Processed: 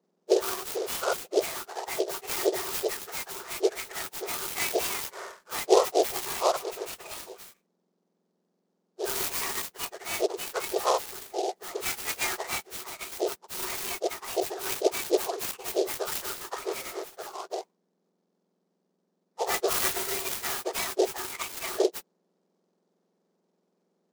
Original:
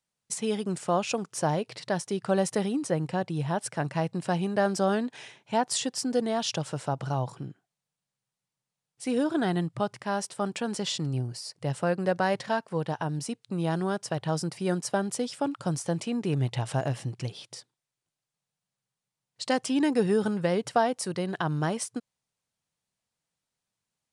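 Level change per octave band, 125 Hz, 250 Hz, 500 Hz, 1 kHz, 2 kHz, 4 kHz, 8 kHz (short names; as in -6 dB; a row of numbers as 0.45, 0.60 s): -23.0, -9.5, +0.5, -1.5, +1.0, +2.5, +3.5 dB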